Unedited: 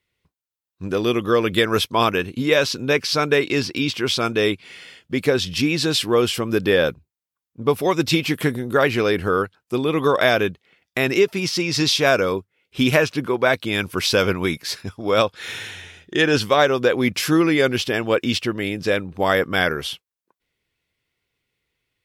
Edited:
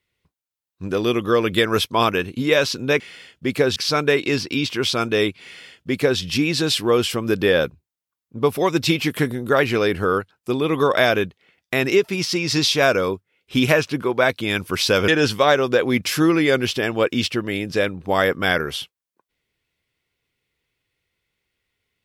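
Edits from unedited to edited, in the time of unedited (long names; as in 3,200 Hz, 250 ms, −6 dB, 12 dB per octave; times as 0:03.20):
0:04.68–0:05.44: duplicate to 0:03.00
0:14.32–0:16.19: remove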